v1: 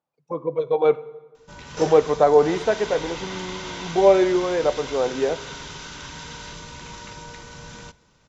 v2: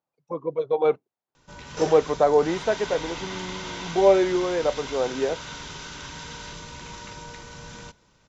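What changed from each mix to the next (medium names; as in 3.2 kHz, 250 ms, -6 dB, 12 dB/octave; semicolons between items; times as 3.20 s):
reverb: off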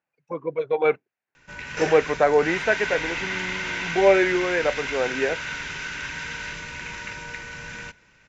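master: add high-order bell 2 kHz +12 dB 1.1 oct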